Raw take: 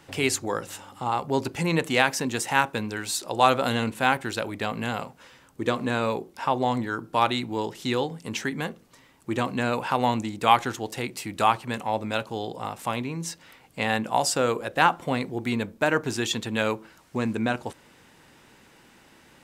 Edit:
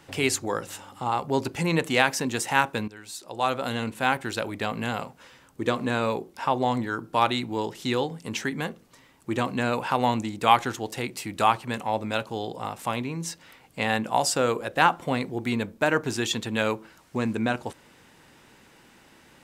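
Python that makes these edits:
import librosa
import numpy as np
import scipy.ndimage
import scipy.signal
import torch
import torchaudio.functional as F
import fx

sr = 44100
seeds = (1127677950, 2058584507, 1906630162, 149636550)

y = fx.edit(x, sr, fx.fade_in_from(start_s=2.88, length_s=1.53, floor_db=-15.0), tone=tone)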